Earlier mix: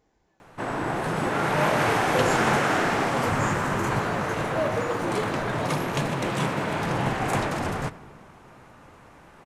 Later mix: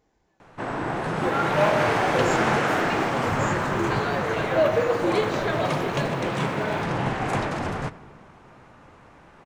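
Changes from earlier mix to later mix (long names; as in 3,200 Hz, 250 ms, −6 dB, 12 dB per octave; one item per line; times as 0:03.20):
first sound: add high-frequency loss of the air 54 metres
second sound +7.0 dB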